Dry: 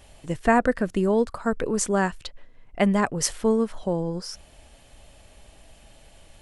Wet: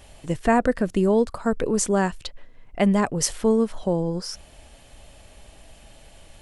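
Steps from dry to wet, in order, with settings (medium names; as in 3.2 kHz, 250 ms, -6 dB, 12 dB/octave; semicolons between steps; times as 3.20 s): dynamic bell 1.5 kHz, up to -4 dB, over -40 dBFS, Q 1.1; in parallel at -2.5 dB: peak limiter -15 dBFS, peak gain reduction 11 dB; on the sum: trim -2 dB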